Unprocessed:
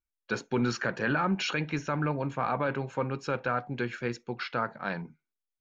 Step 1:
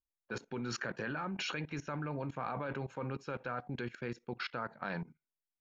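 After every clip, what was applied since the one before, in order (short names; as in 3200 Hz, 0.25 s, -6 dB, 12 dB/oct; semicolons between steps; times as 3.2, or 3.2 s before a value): level quantiser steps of 19 dB; low-pass opened by the level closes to 850 Hz, open at -36 dBFS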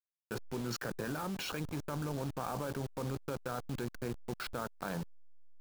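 level-crossing sampler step -40.5 dBFS; dynamic EQ 2100 Hz, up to -7 dB, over -55 dBFS, Q 1.3; gain +2 dB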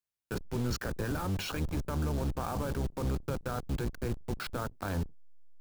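octaver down 1 oct, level +4 dB; gain +2 dB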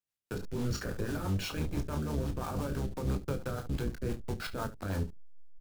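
early reflections 21 ms -9 dB, 31 ms -8.5 dB, 71 ms -12 dB; rotary speaker horn 6 Hz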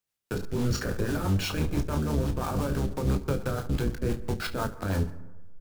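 plate-style reverb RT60 1.1 s, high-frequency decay 0.3×, pre-delay 0.11 s, DRR 18 dB; gain +6 dB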